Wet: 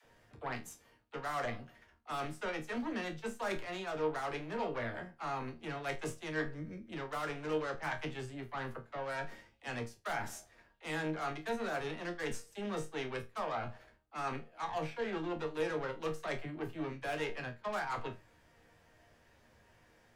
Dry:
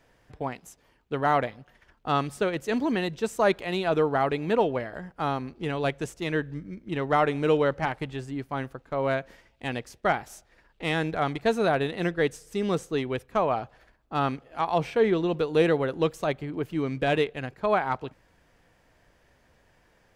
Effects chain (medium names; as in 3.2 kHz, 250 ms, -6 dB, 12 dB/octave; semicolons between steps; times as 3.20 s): dynamic bell 1.5 kHz, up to +7 dB, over -41 dBFS, Q 0.94; Chebyshev shaper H 6 -18 dB, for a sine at -10.5 dBFS; reverse; compression 5:1, threshold -34 dBFS, peak gain reduction 17 dB; reverse; chord resonator D#2 sus4, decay 0.23 s; phase dispersion lows, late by 45 ms, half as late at 350 Hz; trim +8 dB